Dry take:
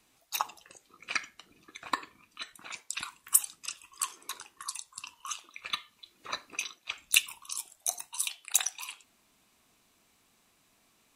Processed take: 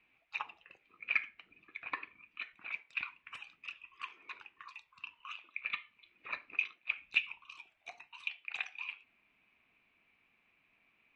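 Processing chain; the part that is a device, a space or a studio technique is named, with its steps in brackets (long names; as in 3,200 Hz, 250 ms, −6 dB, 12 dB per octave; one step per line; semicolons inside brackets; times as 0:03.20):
overdriven synthesiser ladder filter (soft clipping −18.5 dBFS, distortion −8 dB; transistor ladder low-pass 2,600 Hz, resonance 75%)
level +3 dB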